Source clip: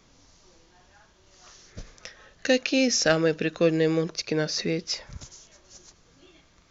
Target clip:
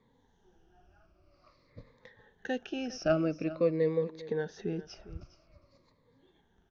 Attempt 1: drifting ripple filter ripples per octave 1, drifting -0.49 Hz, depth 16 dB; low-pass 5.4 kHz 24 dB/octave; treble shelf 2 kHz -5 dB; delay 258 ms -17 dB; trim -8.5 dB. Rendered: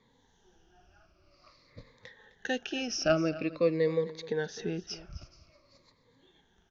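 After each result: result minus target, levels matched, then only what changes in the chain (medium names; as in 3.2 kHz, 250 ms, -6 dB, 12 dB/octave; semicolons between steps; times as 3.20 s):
4 kHz band +8.0 dB; echo 147 ms early
change: treble shelf 2 kHz -16.5 dB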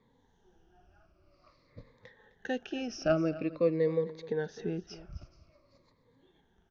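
echo 147 ms early
change: delay 405 ms -17 dB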